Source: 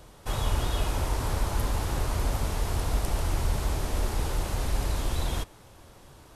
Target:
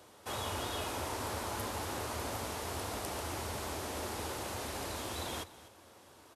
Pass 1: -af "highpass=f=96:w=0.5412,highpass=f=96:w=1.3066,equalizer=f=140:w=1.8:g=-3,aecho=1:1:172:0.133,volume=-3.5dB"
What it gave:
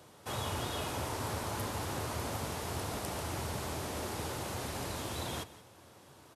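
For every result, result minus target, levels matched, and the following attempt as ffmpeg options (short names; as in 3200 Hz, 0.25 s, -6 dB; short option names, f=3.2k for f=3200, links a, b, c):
echo 78 ms early; 125 Hz band +3.5 dB
-af "highpass=f=96:w=0.5412,highpass=f=96:w=1.3066,equalizer=f=140:w=1.8:g=-3,aecho=1:1:250:0.133,volume=-3.5dB"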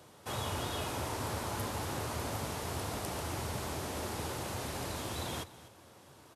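125 Hz band +4.0 dB
-af "highpass=f=96:w=0.5412,highpass=f=96:w=1.3066,equalizer=f=140:w=1.8:g=-13.5,aecho=1:1:250:0.133,volume=-3.5dB"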